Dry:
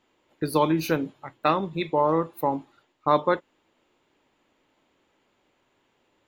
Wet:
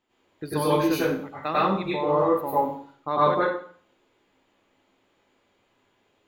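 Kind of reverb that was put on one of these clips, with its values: plate-style reverb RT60 0.52 s, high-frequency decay 0.85×, pre-delay 85 ms, DRR -9 dB; gain -8 dB

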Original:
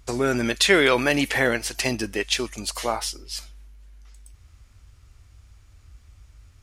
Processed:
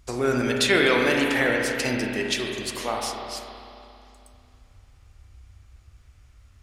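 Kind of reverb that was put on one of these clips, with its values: spring tank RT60 2.7 s, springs 32/44 ms, chirp 40 ms, DRR 0 dB; gain -3.5 dB

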